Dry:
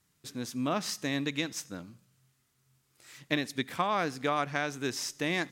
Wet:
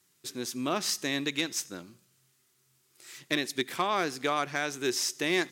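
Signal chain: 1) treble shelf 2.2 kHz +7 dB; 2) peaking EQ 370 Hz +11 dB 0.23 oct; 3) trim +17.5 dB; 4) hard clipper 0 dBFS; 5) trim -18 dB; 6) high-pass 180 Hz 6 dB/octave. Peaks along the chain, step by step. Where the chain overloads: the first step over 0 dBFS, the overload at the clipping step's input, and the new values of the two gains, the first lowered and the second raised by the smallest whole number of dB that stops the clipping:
-10.5 dBFS, -10.0 dBFS, +7.5 dBFS, 0.0 dBFS, -18.0 dBFS, -15.5 dBFS; step 3, 7.5 dB; step 3 +9.5 dB, step 5 -10 dB

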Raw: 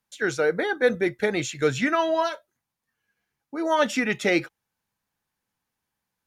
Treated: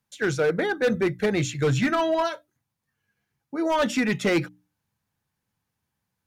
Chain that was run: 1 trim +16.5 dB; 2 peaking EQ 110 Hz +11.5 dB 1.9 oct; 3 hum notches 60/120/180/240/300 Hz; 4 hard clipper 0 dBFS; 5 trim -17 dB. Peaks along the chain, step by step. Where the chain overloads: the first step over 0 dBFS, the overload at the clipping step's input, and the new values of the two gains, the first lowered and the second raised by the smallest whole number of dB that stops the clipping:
+8.0 dBFS, +9.5 dBFS, +9.0 dBFS, 0.0 dBFS, -17.0 dBFS; step 1, 9.0 dB; step 1 +7.5 dB, step 5 -8 dB

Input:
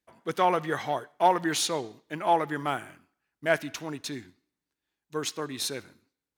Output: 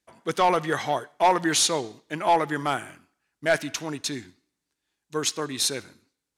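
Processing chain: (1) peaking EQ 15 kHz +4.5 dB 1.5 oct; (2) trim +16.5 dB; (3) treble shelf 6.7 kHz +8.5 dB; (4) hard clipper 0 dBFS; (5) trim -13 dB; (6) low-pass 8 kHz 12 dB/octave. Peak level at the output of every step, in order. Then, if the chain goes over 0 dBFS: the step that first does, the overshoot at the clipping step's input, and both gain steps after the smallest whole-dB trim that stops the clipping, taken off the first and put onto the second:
-8.5 dBFS, +8.0 dBFS, +8.5 dBFS, 0.0 dBFS, -13.0 dBFS, -12.5 dBFS; step 2, 8.5 dB; step 2 +7.5 dB, step 5 -4 dB

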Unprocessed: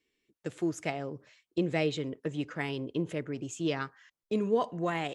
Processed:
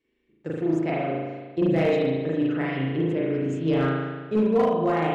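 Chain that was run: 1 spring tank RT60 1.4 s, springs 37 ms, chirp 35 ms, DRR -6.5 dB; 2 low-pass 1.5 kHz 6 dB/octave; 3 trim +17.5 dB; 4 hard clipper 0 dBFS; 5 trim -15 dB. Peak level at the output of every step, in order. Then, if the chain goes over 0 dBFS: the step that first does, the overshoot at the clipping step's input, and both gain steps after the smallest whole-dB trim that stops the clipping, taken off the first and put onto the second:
-10.5 dBFS, -12.0 dBFS, +5.5 dBFS, 0.0 dBFS, -15.0 dBFS; step 3, 5.5 dB; step 3 +11.5 dB, step 5 -9 dB

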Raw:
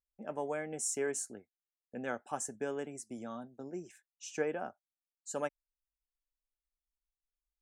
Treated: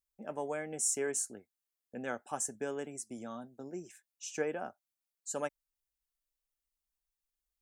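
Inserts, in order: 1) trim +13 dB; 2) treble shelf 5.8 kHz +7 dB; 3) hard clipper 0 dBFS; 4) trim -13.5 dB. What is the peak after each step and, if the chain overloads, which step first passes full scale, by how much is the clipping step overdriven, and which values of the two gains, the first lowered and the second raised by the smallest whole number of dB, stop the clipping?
-8.0 dBFS, -5.5 dBFS, -5.5 dBFS, -19.0 dBFS; nothing clips

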